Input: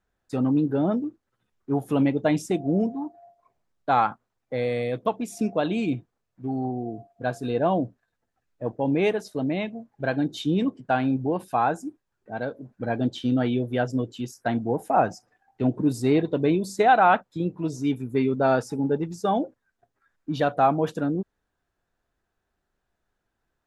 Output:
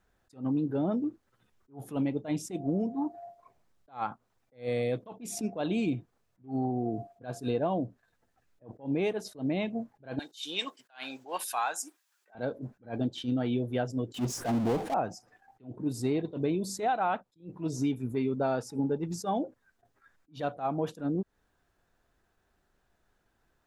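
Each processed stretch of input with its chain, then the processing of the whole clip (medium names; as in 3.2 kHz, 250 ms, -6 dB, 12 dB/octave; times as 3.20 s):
10.19–12.35 s: high-pass 1.1 kHz + treble shelf 2.4 kHz +11 dB
14.14–14.94 s: low-pass that closes with the level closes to 1.1 kHz, closed at -20.5 dBFS + peaking EQ 4.4 kHz -8.5 dB 1.9 oct + power-law waveshaper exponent 0.5
whole clip: dynamic bell 1.7 kHz, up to -4 dB, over -42 dBFS, Q 1.8; compression 6:1, threshold -32 dBFS; attacks held to a fixed rise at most 230 dB/s; trim +5.5 dB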